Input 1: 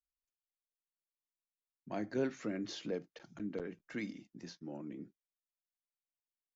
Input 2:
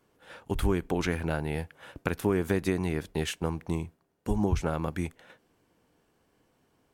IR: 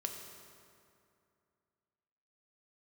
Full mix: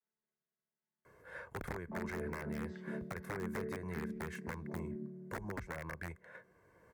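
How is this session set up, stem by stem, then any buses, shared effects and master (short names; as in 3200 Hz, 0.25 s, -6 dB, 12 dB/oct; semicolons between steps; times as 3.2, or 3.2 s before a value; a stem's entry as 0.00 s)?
-6.0 dB, 0.00 s, send -4 dB, chord vocoder major triad, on D3; comb 4.8 ms, depth 50%; limiter -32 dBFS, peak gain reduction 10 dB
-7.5 dB, 1.05 s, no send, comb 1.9 ms, depth 58%; compressor 2.5:1, threshold -36 dBFS, peak gain reduction 12 dB; wrapped overs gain 27.5 dB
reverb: on, RT60 2.5 s, pre-delay 3 ms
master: HPF 41 Hz; resonant high shelf 2400 Hz -7 dB, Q 3; three-band squash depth 40%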